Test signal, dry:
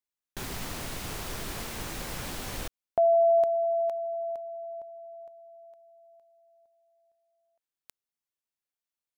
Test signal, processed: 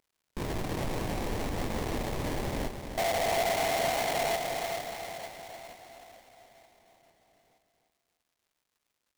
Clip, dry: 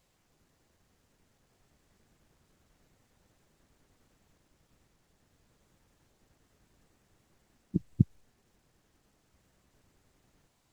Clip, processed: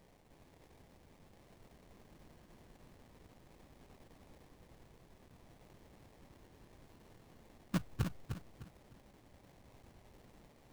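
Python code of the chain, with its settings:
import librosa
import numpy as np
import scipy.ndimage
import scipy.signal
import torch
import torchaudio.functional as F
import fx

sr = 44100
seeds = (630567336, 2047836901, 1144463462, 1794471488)

p1 = fx.cvsd(x, sr, bps=64000)
p2 = fx.over_compress(p1, sr, threshold_db=-30.0, ratio=-1.0)
p3 = p1 + (p2 * 10.0 ** (2.5 / 20.0))
p4 = fx.sample_hold(p3, sr, seeds[0], rate_hz=1400.0, jitter_pct=20)
p5 = np.clip(10.0 ** (21.5 / 20.0) * p4, -1.0, 1.0) / 10.0 ** (21.5 / 20.0)
p6 = fx.dmg_crackle(p5, sr, seeds[1], per_s=260.0, level_db=-57.0)
p7 = p6 + fx.echo_feedback(p6, sr, ms=304, feedback_pct=31, wet_db=-7.0, dry=0)
y = p7 * 10.0 ** (-5.5 / 20.0)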